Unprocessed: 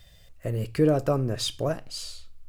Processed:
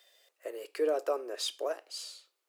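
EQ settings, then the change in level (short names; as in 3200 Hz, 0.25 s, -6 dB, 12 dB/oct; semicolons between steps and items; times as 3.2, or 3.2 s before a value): steep high-pass 360 Hz 48 dB/oct; -5.0 dB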